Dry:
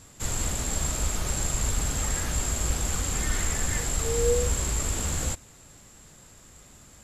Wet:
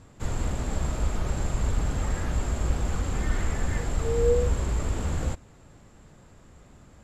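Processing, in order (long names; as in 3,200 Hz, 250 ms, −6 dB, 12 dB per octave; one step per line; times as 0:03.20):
low-pass filter 1,100 Hz 6 dB per octave
level +2.5 dB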